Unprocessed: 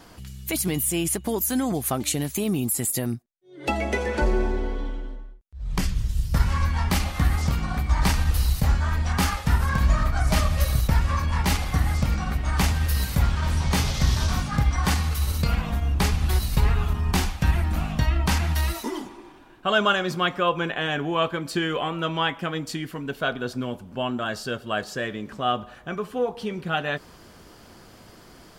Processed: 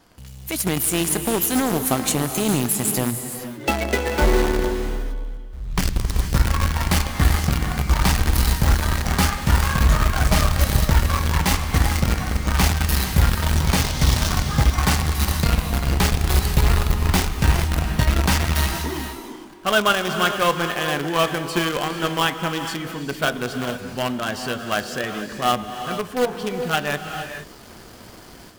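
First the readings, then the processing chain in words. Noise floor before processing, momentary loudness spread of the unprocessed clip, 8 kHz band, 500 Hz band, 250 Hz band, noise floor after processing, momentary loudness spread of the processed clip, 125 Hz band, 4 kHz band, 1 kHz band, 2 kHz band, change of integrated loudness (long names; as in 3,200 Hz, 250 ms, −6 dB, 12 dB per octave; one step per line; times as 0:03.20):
−49 dBFS, 9 LU, +5.5 dB, +4.0 dB, +3.5 dB, −41 dBFS, 9 LU, +3.0 dB, +5.0 dB, +4.0 dB, +4.5 dB, +3.5 dB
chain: automatic gain control gain up to 7 dB
in parallel at −9 dB: log-companded quantiser 2 bits
on the sum: reverb whose tail is shaped and stops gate 490 ms rising, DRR 7 dB
level −7.5 dB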